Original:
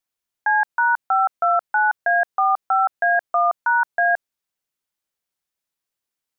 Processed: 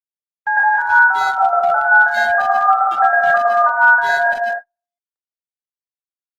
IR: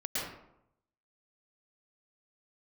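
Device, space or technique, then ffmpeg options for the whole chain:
speakerphone in a meeting room: -filter_complex "[1:a]atrim=start_sample=2205[s0];[0:a][s0]afir=irnorm=-1:irlink=0,asplit=2[s1][s2];[s2]adelay=230,highpass=300,lowpass=3400,asoftclip=type=hard:threshold=0.282,volume=0.447[s3];[s1][s3]amix=inputs=2:normalize=0,dynaudnorm=f=190:g=3:m=2.11,agate=range=0.00447:threshold=0.0891:ratio=16:detection=peak,volume=0.891" -ar 48000 -c:a libopus -b:a 20k

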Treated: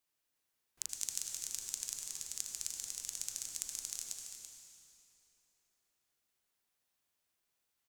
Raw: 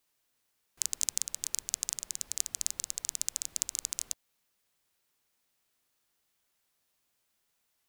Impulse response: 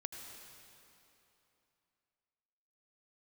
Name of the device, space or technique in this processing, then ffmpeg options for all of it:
cave: -filter_complex "[0:a]aecho=1:1:335:0.355[s0];[1:a]atrim=start_sample=2205[s1];[s0][s1]afir=irnorm=-1:irlink=0,volume=0.596"

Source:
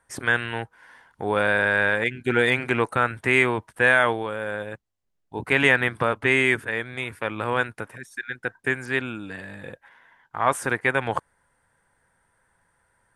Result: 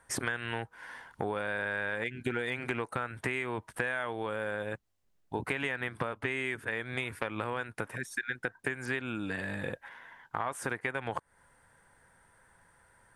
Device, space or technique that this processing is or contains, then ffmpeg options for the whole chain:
serial compression, leveller first: -af "acompressor=threshold=0.0562:ratio=2,acompressor=threshold=0.0178:ratio=5,volume=1.58"

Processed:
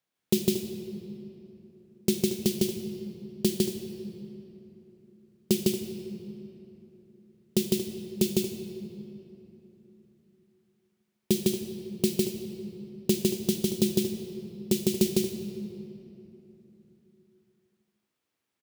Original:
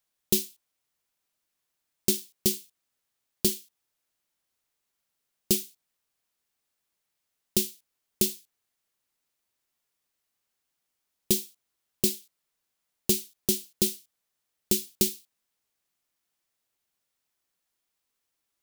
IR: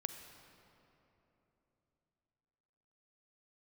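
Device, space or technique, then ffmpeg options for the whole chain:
stadium PA: -filter_complex "[0:a]highpass=120,equalizer=f=2300:t=o:w=2.4:g=7,aecho=1:1:154.5|230.3:0.891|0.251[s0];[1:a]atrim=start_sample=2205[s1];[s0][s1]afir=irnorm=-1:irlink=0,tiltshelf=f=660:g=8"

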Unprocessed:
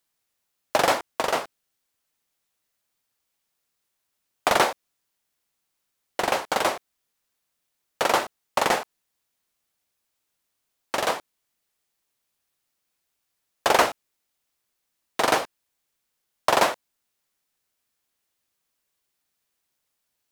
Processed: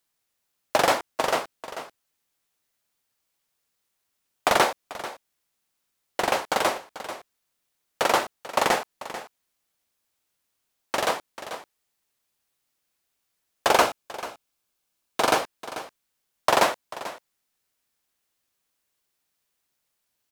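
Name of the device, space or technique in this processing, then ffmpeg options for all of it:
ducked delay: -filter_complex "[0:a]asettb=1/sr,asplit=3[s0][s1][s2];[s0]atrim=end=13.714[s3];[s1]atrim=start=13.71:end=15.39,asetpts=PTS-STARTPTS,afade=t=in:d=0.004:c=qsin,afade=t=out:st=1.676:d=0.004:c=qsin,bandreject=f=1900:w=9[s4];[s2]atrim=start=15.386[s5];[s3][s4]acrossfade=d=0.004:c1=hsin:c2=qsin[s6];[s6][s5]acrossfade=d=0.004:c1=qsin:c2=hsin,asplit=3[s7][s8][s9];[s8]adelay=440,volume=0.398[s10];[s9]apad=whole_len=915486[s11];[s10][s11]sidechaincompress=threshold=0.0398:ratio=5:attack=16:release=848[s12];[s7][s12]amix=inputs=2:normalize=0"

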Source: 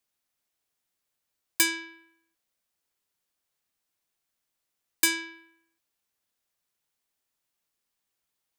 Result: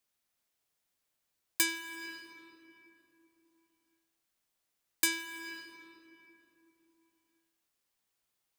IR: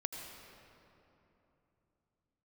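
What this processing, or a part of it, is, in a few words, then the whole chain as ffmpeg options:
ducked reverb: -filter_complex "[0:a]asplit=3[s0][s1][s2];[1:a]atrim=start_sample=2205[s3];[s1][s3]afir=irnorm=-1:irlink=0[s4];[s2]apad=whole_len=378575[s5];[s4][s5]sidechaincompress=threshold=0.0141:ratio=6:attack=16:release=336,volume=1.33[s6];[s0][s6]amix=inputs=2:normalize=0,volume=0.447"

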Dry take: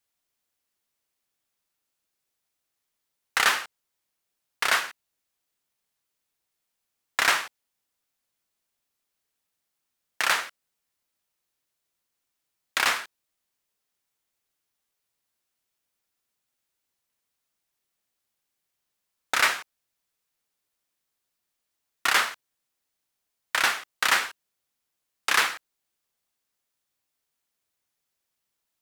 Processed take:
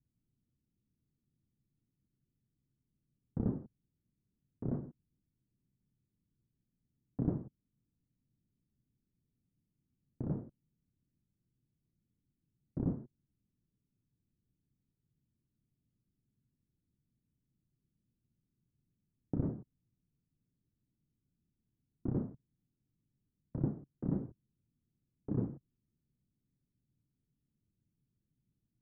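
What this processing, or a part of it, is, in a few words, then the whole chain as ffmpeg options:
the neighbour's flat through the wall: -af "lowpass=f=260:w=0.5412,lowpass=f=260:w=1.3066,equalizer=f=130:t=o:w=0.73:g=7.5,volume=5.62"

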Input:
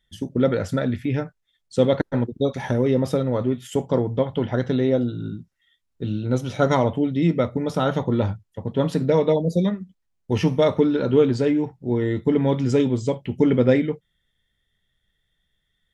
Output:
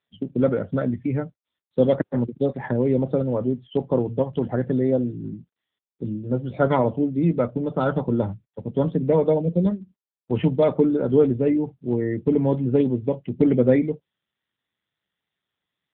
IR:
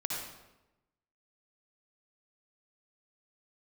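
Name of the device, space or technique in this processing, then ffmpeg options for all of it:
mobile call with aggressive noise cancelling: -af "highpass=f=110:w=0.5412,highpass=f=110:w=1.3066,afftdn=nr=19:nf=-35" -ar 8000 -c:a libopencore_amrnb -b:a 7950

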